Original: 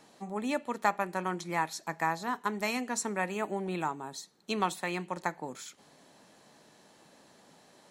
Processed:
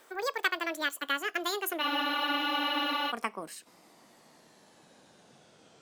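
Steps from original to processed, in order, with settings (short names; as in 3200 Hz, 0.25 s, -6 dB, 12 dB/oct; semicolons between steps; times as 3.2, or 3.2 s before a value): speed glide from 195% -> 77%; spectral freeze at 1.83, 1.26 s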